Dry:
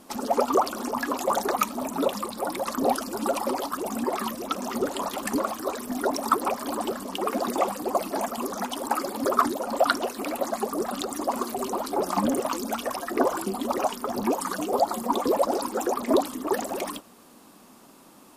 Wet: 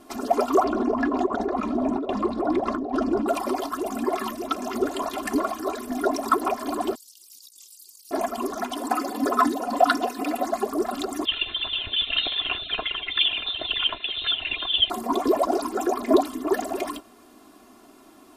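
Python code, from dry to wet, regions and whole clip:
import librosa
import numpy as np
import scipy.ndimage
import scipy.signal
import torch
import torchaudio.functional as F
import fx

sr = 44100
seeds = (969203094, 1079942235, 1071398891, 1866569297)

y = fx.chain(x, sr, fx.lowpass(hz=4900.0, slope=12),
    fx.tilt_shelf(db=8.0, hz=1100.0),
    fx.over_compress(threshold_db=-26.0, ratio=-1.0), at=(0.64, 3.28))
y = fx.chain(y, sr, fx.cheby2_highpass(hz=1800.0, order=4, stop_db=50),
    fx.over_compress(threshold_db=-45.0, ratio=-0.5), at=(6.95, 8.11))
y = fx.chain(y, sr, fx.highpass(hz=84.0, slope=6),
    fx.comb(ms=4.0, depth=0.58), at=(8.77, 10.46))
y = fx.chain(y, sr, fx.high_shelf(hz=2200.0, db=11.0),
    fx.freq_invert(carrier_hz=3900), at=(11.25, 14.9))
y = fx.high_shelf(y, sr, hz=4200.0, db=-6.5)
y = fx.notch(y, sr, hz=970.0, q=23.0)
y = y + 0.76 * np.pad(y, (int(2.9 * sr / 1000.0), 0))[:len(y)]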